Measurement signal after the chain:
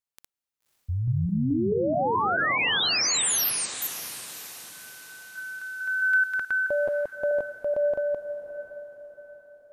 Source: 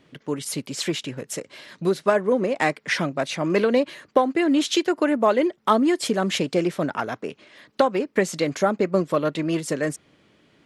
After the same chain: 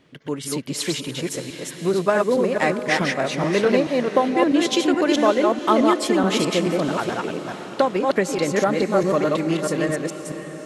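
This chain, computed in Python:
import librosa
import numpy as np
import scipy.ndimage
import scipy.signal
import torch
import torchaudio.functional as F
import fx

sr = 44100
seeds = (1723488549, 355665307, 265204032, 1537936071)

y = fx.reverse_delay(x, sr, ms=215, wet_db=-2)
y = fx.echo_diffused(y, sr, ms=570, feedback_pct=48, wet_db=-11.5)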